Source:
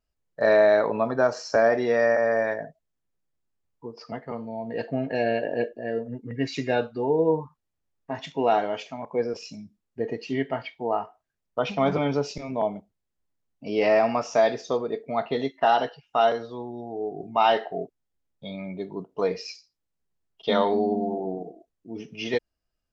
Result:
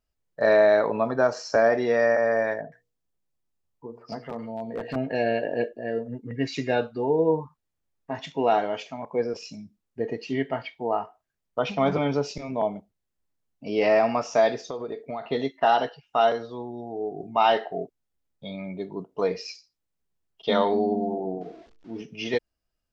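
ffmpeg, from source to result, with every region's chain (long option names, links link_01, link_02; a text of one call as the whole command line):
ffmpeg -i in.wav -filter_complex "[0:a]asettb=1/sr,asplit=3[link_01][link_02][link_03];[link_01]atrim=end=2.614[link_04];[link_02]atrim=start=2.61:end=4.96,asetpts=PTS-STARTPTS,afade=type=in:duration=0.004:curve=qsin,afade=type=out:start_time=2.346:duration=0.004:curve=qsin,bandreject=frequency=60:width_type=h:width=6,bandreject=frequency=120:width_type=h:width=6,bandreject=frequency=180:width_type=h:width=6,bandreject=frequency=240:width_type=h:width=6,bandreject=frequency=300:width_type=h:width=6,bandreject=frequency=360:width_type=h:width=6,bandreject=frequency=420:width_type=h:width=6,bandreject=frequency=480:width_type=h:width=6,acrossover=split=1700[link_05][link_06];[link_06]adelay=110[link_07];[link_05][link_07]amix=inputs=2:normalize=0,atrim=end_sample=103635,aeval=exprs='0.0631*(abs(mod(val(0)/0.0631+3,4)-2)-1)':channel_layout=same[link_08];[link_03]atrim=start=4.956[link_09];[link_04][link_08]acrossfade=duration=0.004:curve1=hsin:curve2=qsin[link_10];[link_10][link_09]acrossfade=duration=0.004:curve1=qsin:curve2=hsin,asettb=1/sr,asplit=3[link_11][link_12][link_13];[link_11]atrim=end=14.704[link_14];[link_12]atrim=start=14.7:end=15.26,asetpts=PTS-STARTPTS,afade=type=in:duration=0.004:curve=qsin,afade=type=out:start_time=0.556:duration=0.004:curve=qsin,equalizer=frequency=200:width_type=o:width=0.35:gain=-5.5,acompressor=threshold=-28dB:ratio=12:attack=3.2:release=140:knee=1:detection=peak[link_15];[link_13]atrim=start=15.256[link_16];[link_14][link_15]acrossfade=duration=0.004:curve1=hsin:curve2=qsin[link_17];[link_17][link_16]acrossfade=duration=0.004:curve1=qsin:curve2=hsin,asettb=1/sr,asplit=3[link_18][link_19][link_20];[link_18]atrim=end=21.414[link_21];[link_19]atrim=start=21.41:end=22.02,asetpts=PTS-STARTPTS,afade=type=in:duration=0.004:curve=qsin,afade=type=out:start_time=0.606:duration=0.004:curve=qsin,aeval=exprs='val(0)+0.5*0.00355*sgn(val(0))':channel_layout=same,lowpass=frequency=5600:width=0.5412,lowpass=frequency=5600:width=1.3066,bandreject=frequency=50:width_type=h:width=6,bandreject=frequency=100:width_type=h:width=6,bandreject=frequency=150:width_type=h:width=6,bandreject=frequency=200:width_type=h:width=6,bandreject=frequency=250:width_type=h:width=6,bandreject=frequency=300:width_type=h:width=6,bandreject=frequency=350:width_type=h:width=6,bandreject=frequency=400:width_type=h:width=6,bandreject=frequency=450:width_type=h:width=6[link_22];[link_20]atrim=start=22.016[link_23];[link_21][link_22]acrossfade=duration=0.004:curve1=hsin:curve2=qsin[link_24];[link_24][link_23]acrossfade=duration=0.004:curve1=qsin:curve2=hsin" out.wav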